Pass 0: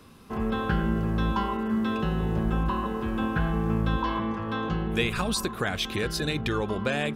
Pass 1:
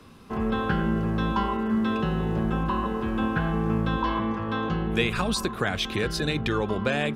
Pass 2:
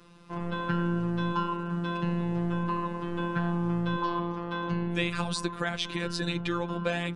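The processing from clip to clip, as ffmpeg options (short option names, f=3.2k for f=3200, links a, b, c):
-filter_complex "[0:a]highshelf=f=9.4k:g=-9,acrossover=split=120[a][b];[a]alimiter=level_in=7dB:limit=-24dB:level=0:latency=1,volume=-7dB[c];[c][b]amix=inputs=2:normalize=0,volume=2dB"
-af "aresample=22050,aresample=44100,afftfilt=real='hypot(re,im)*cos(PI*b)':imag='0':win_size=1024:overlap=0.75,volume=-1dB"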